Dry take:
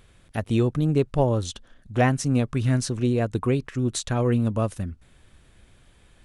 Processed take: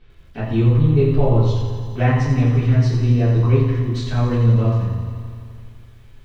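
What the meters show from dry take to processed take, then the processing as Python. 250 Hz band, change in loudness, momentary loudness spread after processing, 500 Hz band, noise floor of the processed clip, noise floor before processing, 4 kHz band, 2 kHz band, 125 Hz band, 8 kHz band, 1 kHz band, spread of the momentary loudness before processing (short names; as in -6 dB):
+3.0 dB, +7.0 dB, 11 LU, +3.0 dB, -44 dBFS, -57 dBFS, 0.0 dB, +2.0 dB, +10.0 dB, under -10 dB, +1.5 dB, 12 LU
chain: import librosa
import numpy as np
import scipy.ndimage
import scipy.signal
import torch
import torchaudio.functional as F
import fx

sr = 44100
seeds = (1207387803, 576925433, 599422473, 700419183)

y = scipy.signal.sosfilt(scipy.signal.butter(4, 4800.0, 'lowpass', fs=sr, output='sos'), x)
y = fx.comb_fb(y, sr, f0_hz=68.0, decay_s=1.8, harmonics='all', damping=0.0, mix_pct=60)
y = fx.echo_feedback(y, sr, ms=86, feedback_pct=40, wet_db=-7.0)
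y = fx.room_shoebox(y, sr, seeds[0], volume_m3=46.0, walls='mixed', distance_m=1.9)
y = fx.echo_crushed(y, sr, ms=85, feedback_pct=80, bits=9, wet_db=-11.0)
y = y * 10.0 ** (-2.0 / 20.0)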